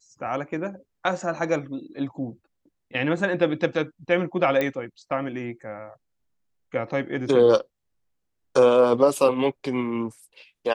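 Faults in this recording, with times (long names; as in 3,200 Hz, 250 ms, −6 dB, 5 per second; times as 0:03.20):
0:04.61: click −12 dBFS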